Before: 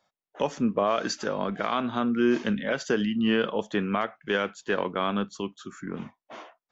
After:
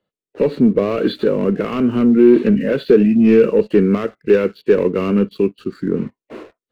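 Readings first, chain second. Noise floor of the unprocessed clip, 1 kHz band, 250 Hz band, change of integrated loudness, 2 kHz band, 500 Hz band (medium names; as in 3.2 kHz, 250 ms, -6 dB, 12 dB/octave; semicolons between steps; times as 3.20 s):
under -85 dBFS, -1.0 dB, +13.5 dB, +12.0 dB, +1.5 dB, +14.0 dB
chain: knee-point frequency compression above 1.9 kHz 1.5:1; waveshaping leveller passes 2; resonant low shelf 570 Hz +8.5 dB, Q 3; trim -2.5 dB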